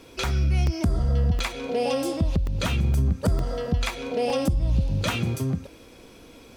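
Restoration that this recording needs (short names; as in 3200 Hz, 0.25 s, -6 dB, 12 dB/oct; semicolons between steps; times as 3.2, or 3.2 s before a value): interpolate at 0.67/1.39/2.47/2.94/3.39/4.3, 1.3 ms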